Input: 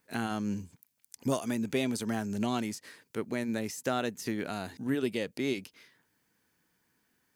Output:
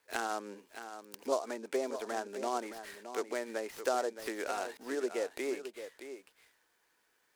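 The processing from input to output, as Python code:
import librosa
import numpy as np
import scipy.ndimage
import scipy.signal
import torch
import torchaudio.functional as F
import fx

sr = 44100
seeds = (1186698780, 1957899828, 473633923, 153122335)

y = fx.env_lowpass_down(x, sr, base_hz=1500.0, full_db=-27.5)
y = scipy.signal.sosfilt(scipy.signal.butter(4, 400.0, 'highpass', fs=sr, output='sos'), y)
y = fx.env_lowpass_down(y, sr, base_hz=1400.0, full_db=-30.0)
y = y + 10.0 ** (-10.5 / 20.0) * np.pad(y, (int(619 * sr / 1000.0), 0))[:len(y)]
y = fx.noise_mod_delay(y, sr, seeds[0], noise_hz=5400.0, depth_ms=0.033)
y = y * librosa.db_to_amplitude(2.0)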